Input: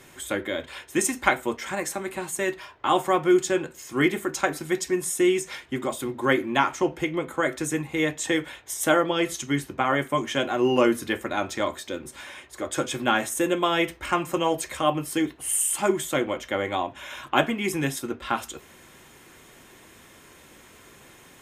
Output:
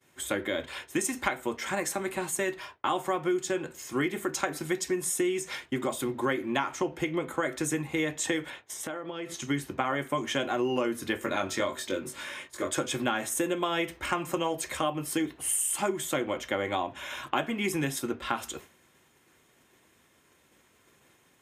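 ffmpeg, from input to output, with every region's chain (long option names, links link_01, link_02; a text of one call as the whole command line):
ffmpeg -i in.wav -filter_complex "[0:a]asettb=1/sr,asplit=3[link_01][link_02][link_03];[link_01]atrim=end=8.504[link_04];[link_02]atrim=start=8.5:end=9.42,asetpts=PTS-STARTPTS,afade=type=in:duration=0.004:curve=qsin,afade=type=out:start_time=0.916:duration=0.004:curve=qsin,highpass=100,aemphasis=mode=reproduction:type=cd,acompressor=threshold=-33dB:ratio=8:attack=3.2:release=140:knee=1:detection=peak[link_05];[link_03]atrim=start=9.416[link_06];[link_04][link_05]acrossfade=duration=0.004:curve1=hsin:curve2=qsin[link_07];[link_07][link_06]acrossfade=duration=0.004:curve1=qsin:curve2=hsin,asettb=1/sr,asplit=3[link_08][link_09][link_10];[link_08]atrim=end=11.204[link_11];[link_09]atrim=start=11.2:end=12.75,asetpts=PTS-STARTPTS,afade=type=in:duration=0.004:curve=qsin,afade=type=out:start_time=1.546:duration=0.004:curve=qsin,equalizer=frequency=65:width_type=o:width=1.1:gain=-6.5,bandreject=frequency=760:width=7.2,asplit=2[link_12][link_13];[link_13]adelay=21,volume=-3dB[link_14];[link_12][link_14]amix=inputs=2:normalize=0,atrim=end_sample=68355[link_15];[link_10]atrim=start=12.746[link_16];[link_11][link_15]acrossfade=duration=0.004:curve1=hsin:curve2=qsin[link_17];[link_17][link_16]acrossfade=duration=0.004:curve1=qsin:curve2=hsin,highpass=58,agate=range=-33dB:threshold=-41dB:ratio=3:detection=peak,acompressor=threshold=-25dB:ratio=6" out.wav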